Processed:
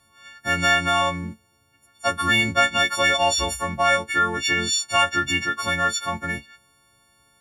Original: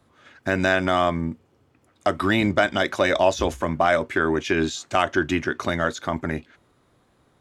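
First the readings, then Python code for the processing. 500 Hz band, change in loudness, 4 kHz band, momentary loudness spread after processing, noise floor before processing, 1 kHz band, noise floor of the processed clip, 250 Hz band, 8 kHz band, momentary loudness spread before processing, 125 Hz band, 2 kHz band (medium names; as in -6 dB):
-5.0 dB, +2.0 dB, +8.0 dB, 9 LU, -63 dBFS, +2.5 dB, -62 dBFS, -6.5 dB, +10.5 dB, 9 LU, -2.5 dB, +4.0 dB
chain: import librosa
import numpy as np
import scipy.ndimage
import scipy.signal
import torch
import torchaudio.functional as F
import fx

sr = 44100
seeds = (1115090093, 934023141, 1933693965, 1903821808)

y = fx.freq_snap(x, sr, grid_st=4)
y = fx.peak_eq(y, sr, hz=370.0, db=-9.0, octaves=1.7)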